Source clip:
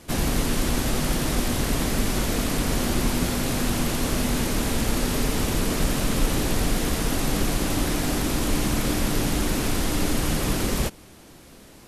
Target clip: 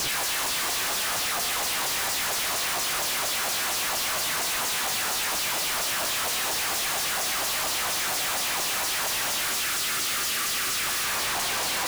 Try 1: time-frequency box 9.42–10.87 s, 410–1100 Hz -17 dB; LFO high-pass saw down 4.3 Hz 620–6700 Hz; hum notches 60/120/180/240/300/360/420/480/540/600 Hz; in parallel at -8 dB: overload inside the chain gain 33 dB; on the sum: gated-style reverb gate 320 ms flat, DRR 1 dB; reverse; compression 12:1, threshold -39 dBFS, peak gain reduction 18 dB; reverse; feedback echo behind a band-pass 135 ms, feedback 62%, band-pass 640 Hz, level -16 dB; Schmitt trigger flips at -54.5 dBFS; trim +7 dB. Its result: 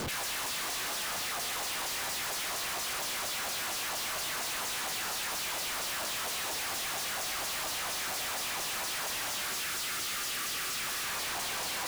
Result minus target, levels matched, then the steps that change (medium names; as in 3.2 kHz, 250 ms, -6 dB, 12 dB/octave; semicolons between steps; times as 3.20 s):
compression: peak gain reduction +8 dB
change: compression 12:1, threshold -30.5 dBFS, peak gain reduction 10.5 dB